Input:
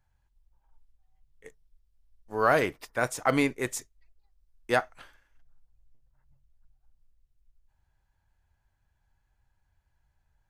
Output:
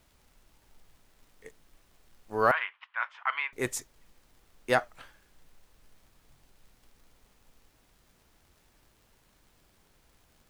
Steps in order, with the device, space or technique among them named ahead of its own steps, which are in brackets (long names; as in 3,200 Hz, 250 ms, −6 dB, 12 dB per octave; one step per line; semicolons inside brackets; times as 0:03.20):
warped LP (wow of a warped record 33 1/3 rpm, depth 100 cents; surface crackle; pink noise bed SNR 31 dB)
0:02.51–0:03.53: elliptic band-pass filter 970–3,100 Hz, stop band 80 dB